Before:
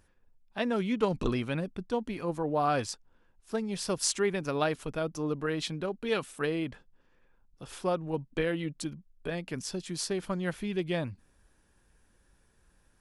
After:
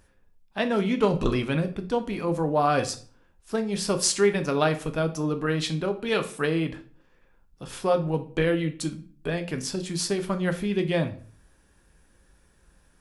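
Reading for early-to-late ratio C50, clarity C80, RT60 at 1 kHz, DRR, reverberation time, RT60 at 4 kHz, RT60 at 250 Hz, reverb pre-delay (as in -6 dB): 14.0 dB, 18.5 dB, 0.45 s, 7.0 dB, 0.45 s, 0.35 s, 0.55 s, 8 ms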